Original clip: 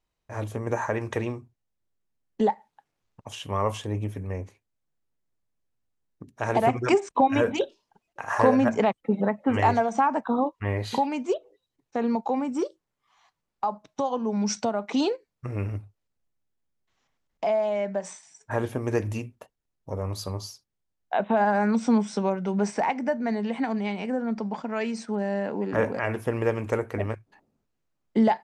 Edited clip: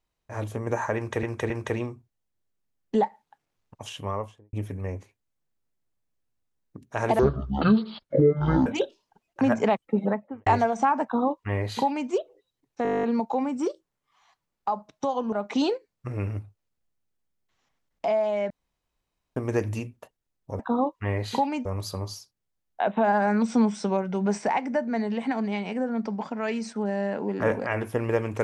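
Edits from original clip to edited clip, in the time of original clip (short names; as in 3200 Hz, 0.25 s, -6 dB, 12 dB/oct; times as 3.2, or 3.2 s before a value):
0.96–1.23 loop, 3 plays
3.34–3.99 studio fade out
6.65–7.46 speed 55%
8.21–8.57 cut
9.18–9.62 studio fade out
10.19–11.25 copy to 19.98
11.99 stutter 0.02 s, 11 plays
14.28–14.71 cut
17.89–18.75 room tone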